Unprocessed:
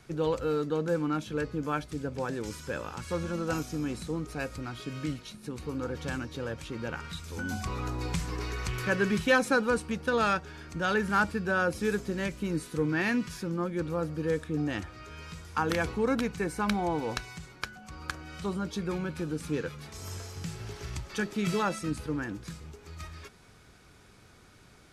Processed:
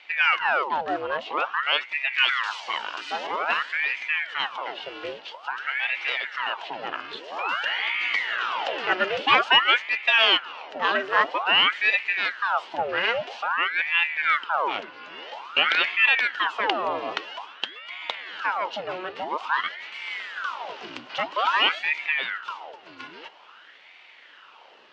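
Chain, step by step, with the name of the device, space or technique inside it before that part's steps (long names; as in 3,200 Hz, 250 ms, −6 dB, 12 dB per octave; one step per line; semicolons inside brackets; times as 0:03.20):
voice changer toy (ring modulator whose carrier an LFO sweeps 1,200 Hz, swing 85%, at 0.5 Hz; loudspeaker in its box 430–4,400 Hz, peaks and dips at 930 Hz +4 dB, 1,400 Hz +4 dB, 2,900 Hz +10 dB)
0:02.13–0:03.27: spectral tilt +3.5 dB per octave
level +6.5 dB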